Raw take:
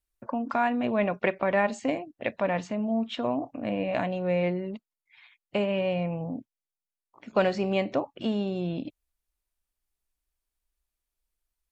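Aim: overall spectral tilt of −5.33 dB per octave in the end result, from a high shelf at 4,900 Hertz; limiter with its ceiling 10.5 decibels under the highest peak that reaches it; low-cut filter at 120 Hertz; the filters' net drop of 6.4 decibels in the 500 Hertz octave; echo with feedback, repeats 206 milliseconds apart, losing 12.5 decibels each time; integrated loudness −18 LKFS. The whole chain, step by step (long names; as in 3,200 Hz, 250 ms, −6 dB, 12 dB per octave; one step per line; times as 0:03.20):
high-pass filter 120 Hz
parametric band 500 Hz −8 dB
high-shelf EQ 4,900 Hz −4.5 dB
brickwall limiter −24 dBFS
repeating echo 206 ms, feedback 24%, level −12.5 dB
level +16.5 dB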